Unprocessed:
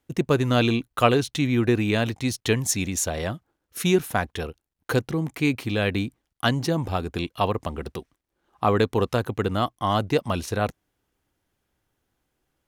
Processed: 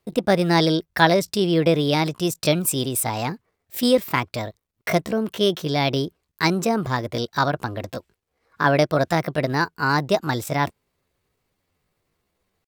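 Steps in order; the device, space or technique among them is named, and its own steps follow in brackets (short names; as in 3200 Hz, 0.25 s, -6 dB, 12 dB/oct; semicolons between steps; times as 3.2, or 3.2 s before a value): chipmunk voice (pitch shift +5.5 st); gain +2.5 dB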